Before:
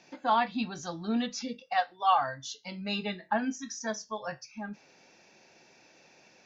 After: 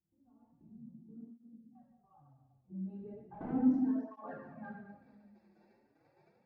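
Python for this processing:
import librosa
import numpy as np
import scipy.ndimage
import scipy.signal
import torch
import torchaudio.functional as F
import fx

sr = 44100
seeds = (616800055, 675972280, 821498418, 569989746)

p1 = fx.wiener(x, sr, points=15)
p2 = fx.leveller(p1, sr, passes=5, at=(3.34, 3.77))
p3 = fx.filter_sweep_lowpass(p2, sr, from_hz=110.0, to_hz=6100.0, start_s=1.94, end_s=5.43, q=0.97)
p4 = fx.level_steps(p3, sr, step_db=21)
p5 = fx.peak_eq(p4, sr, hz=110.0, db=3.0, octaves=0.77)
p6 = p5 + fx.echo_single(p5, sr, ms=146, db=-12.5, dry=0)
p7 = fx.room_shoebox(p6, sr, seeds[0], volume_m3=730.0, walls='mixed', distance_m=3.6)
p8 = fx.flanger_cancel(p7, sr, hz=0.36, depth_ms=7.7)
y = F.gain(torch.from_numpy(p8), -7.0).numpy()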